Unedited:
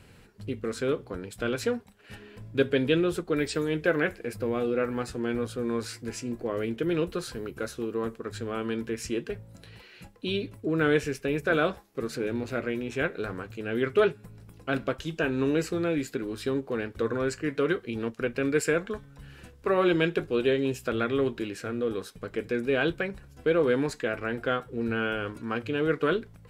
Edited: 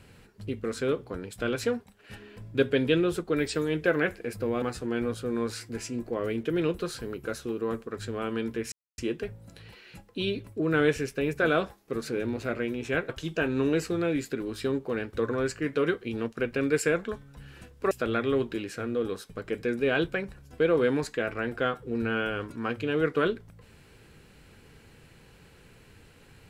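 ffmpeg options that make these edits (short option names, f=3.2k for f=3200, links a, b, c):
-filter_complex "[0:a]asplit=5[a][b][c][d][e];[a]atrim=end=4.622[f];[b]atrim=start=4.948:end=9.05,asetpts=PTS-STARTPTS,afade=t=out:st=4.098:d=0.004:c=hsin,apad=pad_dur=0.26[g];[c]atrim=start=9.05:end=13.162,asetpts=PTS-STARTPTS,afade=t=in:d=0.004:c=hsin[h];[d]atrim=start=14.908:end=19.732[i];[e]atrim=start=20.768[j];[g][h]concat=n=2:v=0:a=1[k];[f][k]acrossfade=d=0.004:c1=hsin:c2=hsin[l];[l][i]acrossfade=d=0.004:c1=hsin:c2=hsin[m];[m][j]acrossfade=d=0.004:c1=hsin:c2=hsin"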